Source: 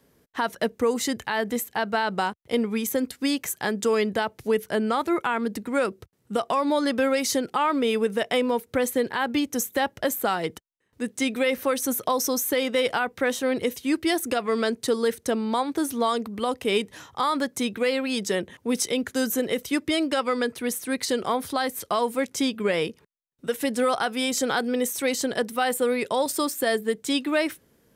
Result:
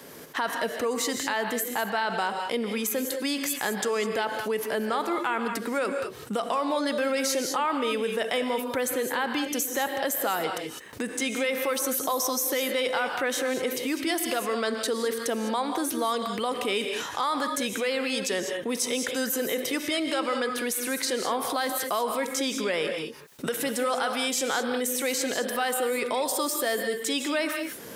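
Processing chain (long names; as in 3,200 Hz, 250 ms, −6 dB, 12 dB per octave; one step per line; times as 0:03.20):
camcorder AGC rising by 24 dB per second
high-pass filter 430 Hz 6 dB per octave
reverb whose tail is shaped and stops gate 230 ms rising, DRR 7.5 dB
envelope flattener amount 50%
level −3.5 dB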